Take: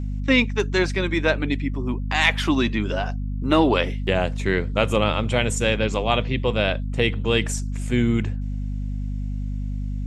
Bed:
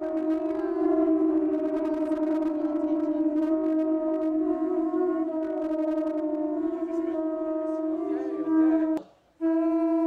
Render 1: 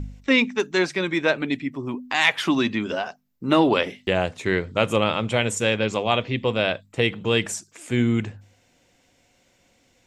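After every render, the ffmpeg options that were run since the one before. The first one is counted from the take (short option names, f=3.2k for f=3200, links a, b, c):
-af "bandreject=f=50:t=h:w=4,bandreject=f=100:t=h:w=4,bandreject=f=150:t=h:w=4,bandreject=f=200:t=h:w=4,bandreject=f=250:t=h:w=4"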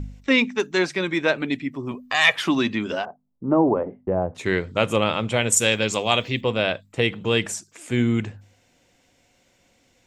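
-filter_complex "[0:a]asettb=1/sr,asplit=3[a][b][c];[a]atrim=end=1.914[d];[b]atrim=start=1.91:end=2.36,asetpts=PTS-STARTPTS,afade=t=in:d=0.004:c=qsin,afade=t=out:st=0.446:d=0.004:c=qsin,aecho=1:1:1.7:0.65,atrim=end_sample=19845[e];[c]atrim=start=2.356[f];[d][e]acrossfade=d=0.004:c1=hsin:c2=qsin[g];[g][f]acrossfade=d=0.004:c1=qsin:c2=hsin,asettb=1/sr,asplit=3[h][i][j];[h]atrim=end=3.054[k];[i]atrim=start=3.05:end=4.35,asetpts=PTS-STARTPTS,afade=t=in:d=0.004:c=qsin,afade=t=out:st=1.296:d=0.004:c=qsin,lowpass=f=1k:w=0.5412,lowpass=f=1k:w=1.3066[l];[j]atrim=start=4.346[m];[k][l]acrossfade=d=0.004:c1=hsin:c2=qsin[n];[n][m]acrossfade=d=0.004:c1=qsin:c2=hsin,asettb=1/sr,asplit=3[o][p][q];[o]atrim=end=5.524[r];[p]atrim=start=5.52:end=6.41,asetpts=PTS-STARTPTS,afade=t=in:d=0.004:c=qsin,afade=t=out:st=0.886:d=0.004:c=qsin,aemphasis=mode=production:type=75fm[s];[q]atrim=start=6.406[t];[r][s]acrossfade=d=0.004:c1=hsin:c2=qsin[u];[u][t]acrossfade=d=0.004:c1=qsin:c2=hsin"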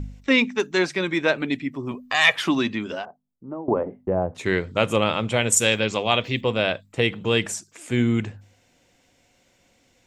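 -filter_complex "[0:a]asettb=1/sr,asplit=3[a][b][c];[a]atrim=end=5.804[d];[b]atrim=start=5.8:end=6.24,asetpts=PTS-STARTPTS,afade=t=in:d=0.004:c=qsin,afade=t=out:st=0.436:d=0.004:c=qsin,lowpass=4.4k[e];[c]atrim=start=6.236[f];[d][e]acrossfade=d=0.004:c1=hsin:c2=qsin[g];[g][f]acrossfade=d=0.004:c1=qsin:c2=hsin,asplit=2[h][i];[h]atrim=end=3.68,asetpts=PTS-STARTPTS,afade=t=out:st=2.45:d=1.23:silence=0.0944061[j];[i]atrim=start=3.68,asetpts=PTS-STARTPTS,afade=t=in:d=0.004:c=hsin:silence=0.0944061[k];[j][k]concat=n=2:v=0:a=1"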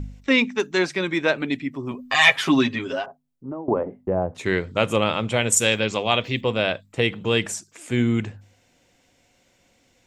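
-filter_complex "[0:a]asettb=1/sr,asplit=3[a][b][c];[a]atrim=end=1.984[d];[b]atrim=start=1.98:end=3.52,asetpts=PTS-STARTPTS,afade=t=in:d=0.004:c=qsin,afade=t=out:st=1.536:d=0.004:c=qsin,aecho=1:1:7.4:0.86,atrim=end_sample=67914[e];[c]atrim=start=3.516[f];[d][e]acrossfade=d=0.004:c1=hsin:c2=qsin[g];[g][f]acrossfade=d=0.004:c1=qsin:c2=hsin"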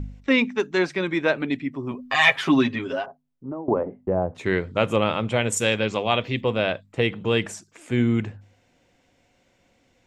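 -af "highshelf=f=4.2k:g=-10"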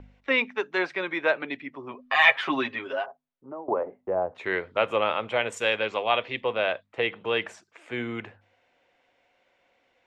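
-filter_complex "[0:a]acrossover=split=430 3800:gain=0.126 1 0.126[a][b][c];[a][b][c]amix=inputs=3:normalize=0"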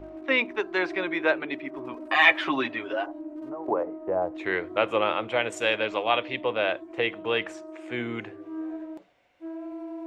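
-filter_complex "[1:a]volume=-13dB[a];[0:a][a]amix=inputs=2:normalize=0"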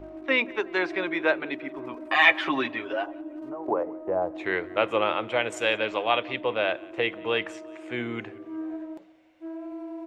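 -filter_complex "[0:a]asplit=2[a][b];[b]adelay=180,lowpass=f=4.2k:p=1,volume=-22.5dB,asplit=2[c][d];[d]adelay=180,lowpass=f=4.2k:p=1,volume=0.54,asplit=2[e][f];[f]adelay=180,lowpass=f=4.2k:p=1,volume=0.54,asplit=2[g][h];[h]adelay=180,lowpass=f=4.2k:p=1,volume=0.54[i];[a][c][e][g][i]amix=inputs=5:normalize=0"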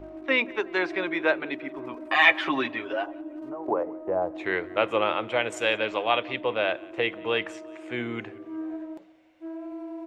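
-af anull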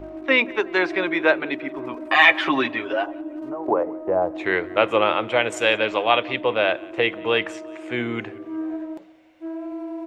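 -af "volume=5.5dB,alimiter=limit=-2dB:level=0:latency=1"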